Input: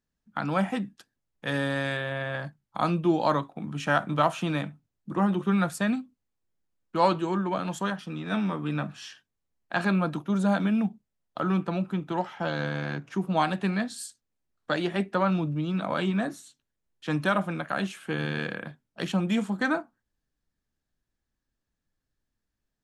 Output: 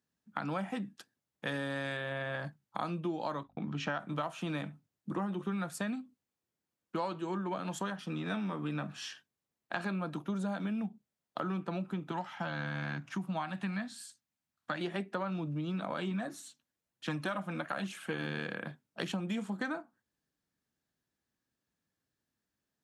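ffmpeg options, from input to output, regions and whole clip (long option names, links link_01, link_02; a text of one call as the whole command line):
ffmpeg -i in.wav -filter_complex "[0:a]asettb=1/sr,asplit=3[link_01][link_02][link_03];[link_01]atrim=end=3.434[link_04];[link_02]atrim=start=3.43:end=4,asetpts=PTS-STARTPTS,afade=type=in:duration=0.004:curve=qsin,afade=type=out:start_time=0.566:duration=0.004:curve=qsin,agate=range=-33dB:threshold=-42dB:ratio=3:release=100:detection=peak,lowpass=frequency=5800:width=0.5412,lowpass=frequency=5800:width=1.3066,aeval=exprs='val(0)+0.00126*(sin(2*PI*50*n/s)+sin(2*PI*2*50*n/s)/2+sin(2*PI*3*50*n/s)/3+sin(2*PI*4*50*n/s)/4+sin(2*PI*5*50*n/s)/5)':channel_layout=same[link_05];[link_03]atrim=start=3.996[link_06];[link_04][link_05]acrossfade=duration=0.004:curve1=hsin:curve2=qsin[link_07];[link_07][link_06]acrossfade=duration=0.004:curve1=qsin:curve2=hsin,asettb=1/sr,asplit=3[link_08][link_09][link_10];[link_08]atrim=end=12.114[link_11];[link_09]atrim=start=12.11:end=14.81,asetpts=PTS-STARTPTS,afade=type=in:duration=0.004:curve=qsin,afade=type=out:start_time=2.696:duration=0.004:curve=qsin,acrossover=split=2900[link_12][link_13];[link_13]acompressor=threshold=-46dB:ratio=4:attack=1:release=60[link_14];[link_12][link_14]amix=inputs=2:normalize=0,equalizer=frequency=430:width_type=o:width=0.71:gain=-15[link_15];[link_10]atrim=start=14.806[link_16];[link_11][link_15]acrossfade=duration=0.004:curve1=hsin:curve2=qsin[link_17];[link_17][link_16]acrossfade=duration=0.004:curve1=qsin:curve2=hsin,asettb=1/sr,asplit=3[link_18][link_19][link_20];[link_18]atrim=end=16.114[link_21];[link_19]atrim=start=16.11:end=18.26,asetpts=PTS-STARTPTS,afade=type=in:duration=0.004:curve=qsin,afade=type=out:start_time=2.146:duration=0.004:curve=qsin,aphaser=in_gain=1:out_gain=1:delay=4.9:decay=0.33:speed=1.1:type=triangular,bandreject=frequency=410:width=7[link_22];[link_20]atrim=start=18.256[link_23];[link_21][link_22]acrossfade=duration=0.004:curve1=hsin:curve2=qsin[link_24];[link_24][link_23]acrossfade=duration=0.004:curve1=qsin:curve2=hsin,highpass=120,acompressor=threshold=-33dB:ratio=6" out.wav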